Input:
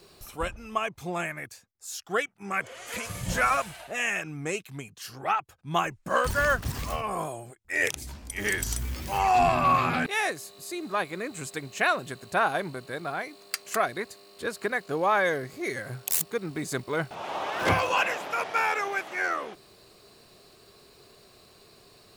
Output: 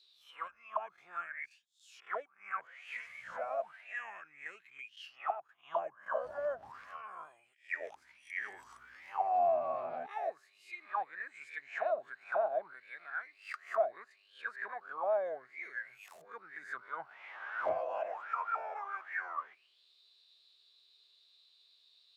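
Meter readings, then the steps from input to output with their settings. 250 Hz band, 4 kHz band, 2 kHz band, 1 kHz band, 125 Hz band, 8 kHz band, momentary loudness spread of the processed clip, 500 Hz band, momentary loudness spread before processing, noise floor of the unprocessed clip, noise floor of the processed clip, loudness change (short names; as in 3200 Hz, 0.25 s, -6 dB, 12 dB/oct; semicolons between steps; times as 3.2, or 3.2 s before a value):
-28.0 dB, -20.5 dB, -13.0 dB, -10.0 dB, under -30 dB, under -30 dB, 15 LU, -6.5 dB, 13 LU, -56 dBFS, -69 dBFS, -10.5 dB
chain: spectral swells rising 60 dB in 0.35 s; auto-wah 640–3900 Hz, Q 11, down, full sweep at -21 dBFS; gain +1 dB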